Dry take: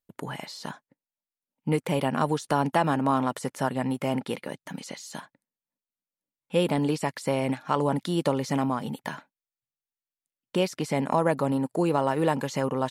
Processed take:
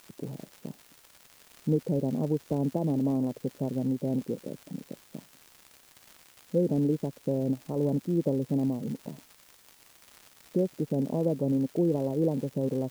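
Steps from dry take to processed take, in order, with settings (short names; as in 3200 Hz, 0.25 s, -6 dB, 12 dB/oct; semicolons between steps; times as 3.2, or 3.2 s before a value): inverse Chebyshev low-pass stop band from 2300 Hz, stop band 70 dB; crackle 180/s -38 dBFS; requantised 10-bit, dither triangular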